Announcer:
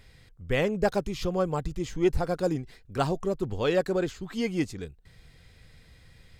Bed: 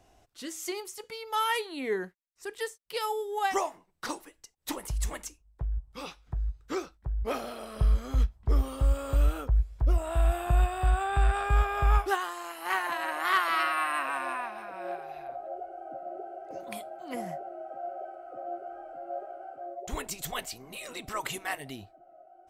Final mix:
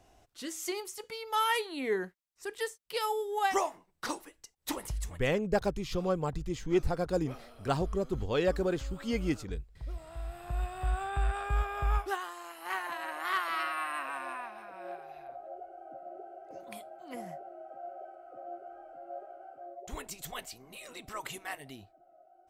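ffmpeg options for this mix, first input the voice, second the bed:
-filter_complex "[0:a]adelay=4700,volume=-3.5dB[a];[1:a]volume=9dB,afade=t=out:st=4.8:d=0.37:silence=0.177828,afade=t=in:st=10.31:d=0.63:silence=0.334965[b];[a][b]amix=inputs=2:normalize=0"

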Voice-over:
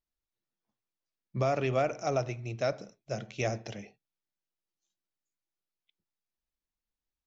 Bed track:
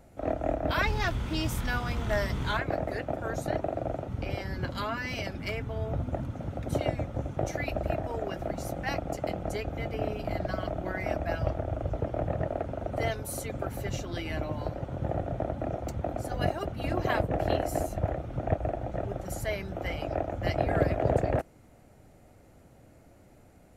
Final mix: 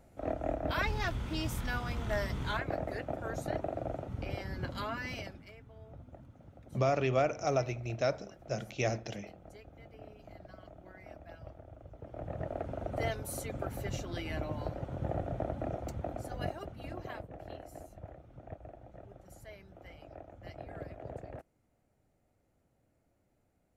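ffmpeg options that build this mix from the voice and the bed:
-filter_complex "[0:a]adelay=5400,volume=-0.5dB[a];[1:a]volume=10.5dB,afade=t=out:st=5.08:d=0.38:silence=0.188365,afade=t=in:st=11.98:d=0.76:silence=0.16788,afade=t=out:st=15.67:d=1.61:silence=0.188365[b];[a][b]amix=inputs=2:normalize=0"

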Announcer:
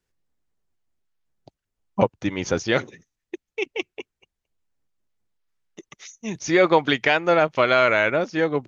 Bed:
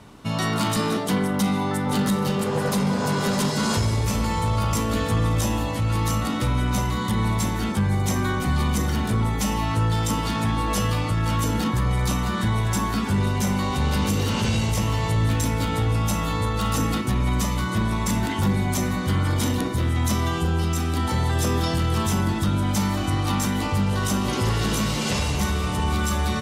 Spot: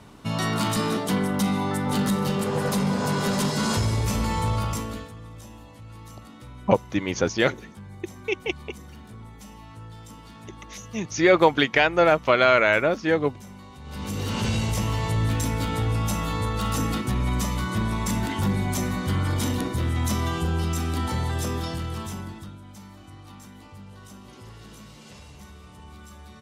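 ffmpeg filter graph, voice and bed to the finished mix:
-filter_complex "[0:a]adelay=4700,volume=0dB[a];[1:a]volume=16.5dB,afade=t=out:st=4.48:d=0.64:silence=0.112202,afade=t=in:st=13.84:d=0.6:silence=0.125893,afade=t=out:st=20.92:d=1.67:silence=0.105925[b];[a][b]amix=inputs=2:normalize=0"

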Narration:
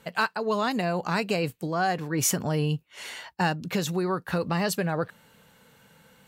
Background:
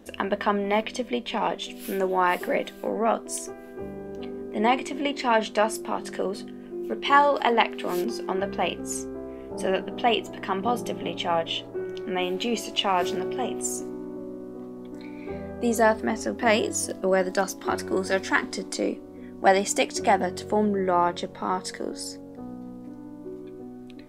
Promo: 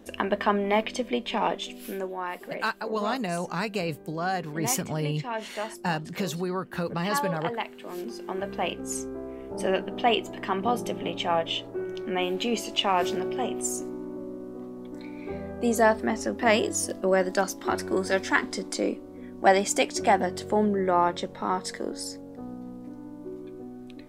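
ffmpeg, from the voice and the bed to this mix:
-filter_complex "[0:a]adelay=2450,volume=-3dB[a];[1:a]volume=10.5dB,afade=t=out:st=1.55:d=0.61:silence=0.281838,afade=t=in:st=7.83:d=1.21:silence=0.298538[b];[a][b]amix=inputs=2:normalize=0"

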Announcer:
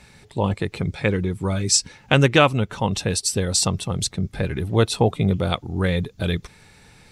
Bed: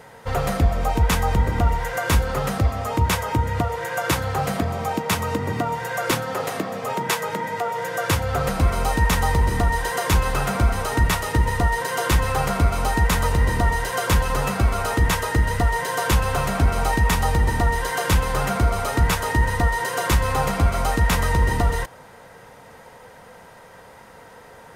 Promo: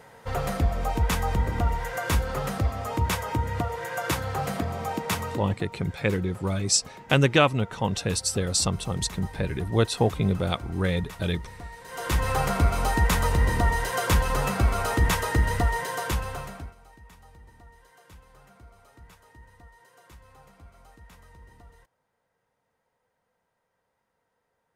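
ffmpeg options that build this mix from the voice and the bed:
-filter_complex "[0:a]adelay=5000,volume=-4dB[a];[1:a]volume=12.5dB,afade=t=out:st=5.18:d=0.4:silence=0.16788,afade=t=in:st=11.84:d=0.47:silence=0.125893,afade=t=out:st=15.53:d=1.22:silence=0.0354813[b];[a][b]amix=inputs=2:normalize=0"

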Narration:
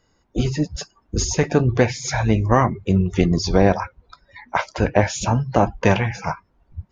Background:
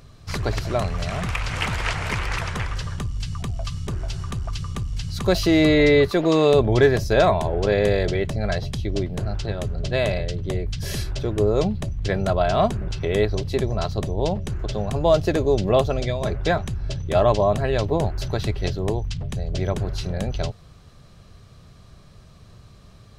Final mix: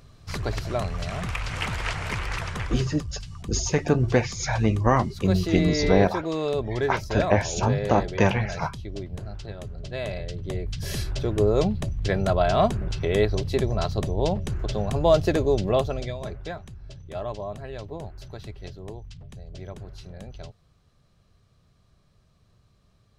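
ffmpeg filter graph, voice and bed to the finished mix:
-filter_complex "[0:a]adelay=2350,volume=-4dB[a];[1:a]volume=5dB,afade=t=out:st=2.77:d=0.3:silence=0.501187,afade=t=in:st=9.96:d=1.25:silence=0.354813,afade=t=out:st=15.29:d=1.25:silence=0.211349[b];[a][b]amix=inputs=2:normalize=0"

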